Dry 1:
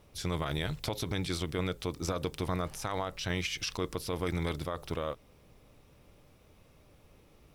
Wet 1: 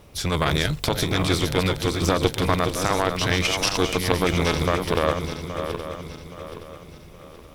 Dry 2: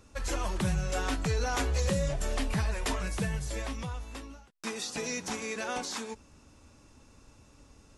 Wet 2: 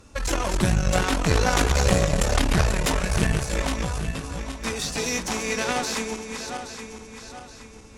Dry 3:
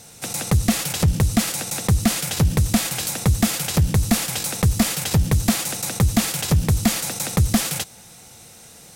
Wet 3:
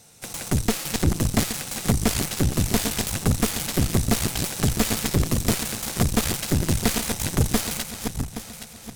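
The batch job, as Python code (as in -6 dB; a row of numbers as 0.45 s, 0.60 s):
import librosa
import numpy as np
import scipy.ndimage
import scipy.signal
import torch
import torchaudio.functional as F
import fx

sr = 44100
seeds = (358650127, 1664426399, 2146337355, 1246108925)

y = fx.reverse_delay_fb(x, sr, ms=411, feedback_pct=63, wet_db=-6.5)
y = fx.cheby_harmonics(y, sr, harmonics=(3, 6), levels_db=(-21, -11), full_scale_db=-3.0)
y = y * 10.0 ** (-24 / 20.0) / np.sqrt(np.mean(np.square(y)))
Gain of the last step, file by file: +13.5 dB, +9.5 dB, -5.0 dB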